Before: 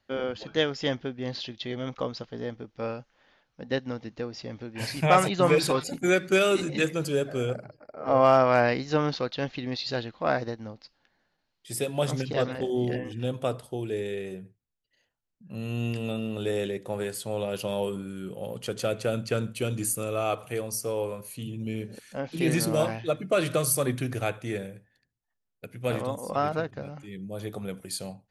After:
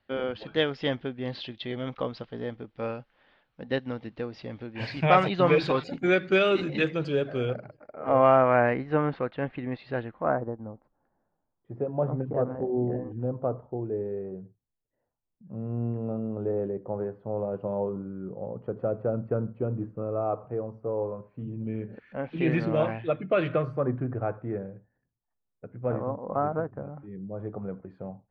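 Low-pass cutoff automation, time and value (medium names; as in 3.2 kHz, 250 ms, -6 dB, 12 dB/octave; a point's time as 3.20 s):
low-pass 24 dB/octave
7.53 s 3.8 kHz
8.58 s 2.2 kHz
10.07 s 2.2 kHz
10.47 s 1.1 kHz
21.12 s 1.1 kHz
22.36 s 2.7 kHz
23.45 s 2.7 kHz
23.87 s 1.3 kHz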